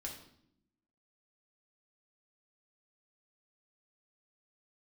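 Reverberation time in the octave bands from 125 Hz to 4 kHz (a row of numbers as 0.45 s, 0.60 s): 1.1 s, 1.2 s, 0.80 s, 0.65 s, 0.60 s, 0.60 s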